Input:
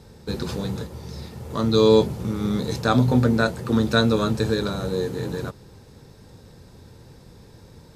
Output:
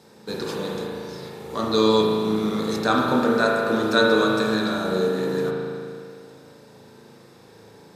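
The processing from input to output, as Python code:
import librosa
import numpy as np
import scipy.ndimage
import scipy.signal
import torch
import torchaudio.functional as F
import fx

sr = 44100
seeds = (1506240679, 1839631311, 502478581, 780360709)

y = scipy.signal.sosfilt(scipy.signal.butter(2, 240.0, 'highpass', fs=sr, output='sos'), x)
y = fx.hum_notches(y, sr, base_hz=60, count=9)
y = fx.rev_spring(y, sr, rt60_s=2.3, pass_ms=(37,), chirp_ms=50, drr_db=-2.0)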